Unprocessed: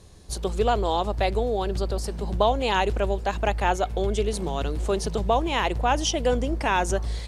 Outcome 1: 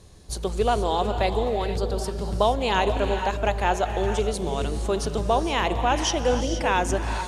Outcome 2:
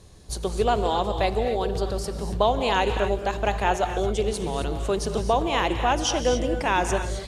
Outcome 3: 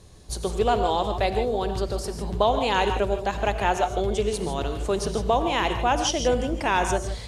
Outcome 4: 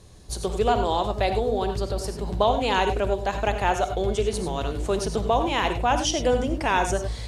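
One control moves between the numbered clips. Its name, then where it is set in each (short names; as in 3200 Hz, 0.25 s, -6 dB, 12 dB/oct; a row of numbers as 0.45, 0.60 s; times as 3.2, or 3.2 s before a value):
non-linear reverb, gate: 0.5, 0.29, 0.18, 0.12 s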